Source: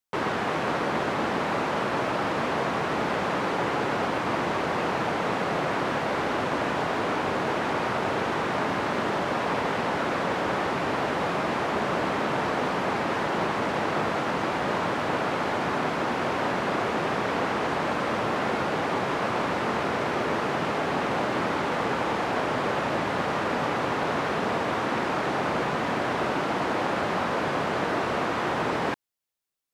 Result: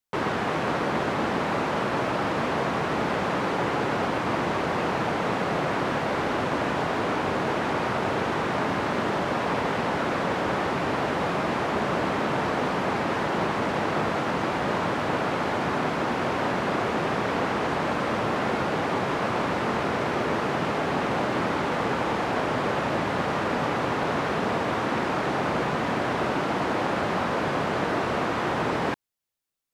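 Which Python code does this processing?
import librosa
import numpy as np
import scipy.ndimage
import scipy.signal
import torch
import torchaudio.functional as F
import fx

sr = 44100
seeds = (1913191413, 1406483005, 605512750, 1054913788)

y = fx.low_shelf(x, sr, hz=230.0, db=4.0)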